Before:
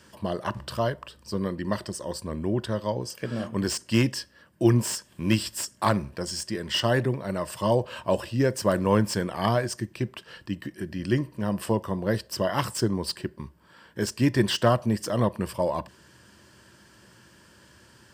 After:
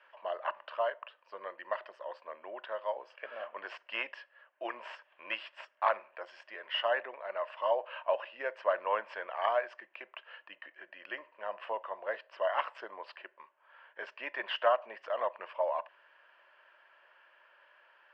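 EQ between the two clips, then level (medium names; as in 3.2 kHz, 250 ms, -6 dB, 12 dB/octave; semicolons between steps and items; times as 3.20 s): elliptic band-pass 600–2700 Hz, stop band 70 dB; -3.0 dB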